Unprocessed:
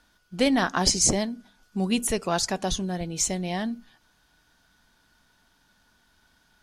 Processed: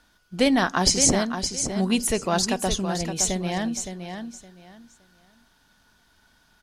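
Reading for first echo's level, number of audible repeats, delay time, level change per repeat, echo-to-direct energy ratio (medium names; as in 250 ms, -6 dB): -8.0 dB, 3, 566 ms, -13.0 dB, -8.0 dB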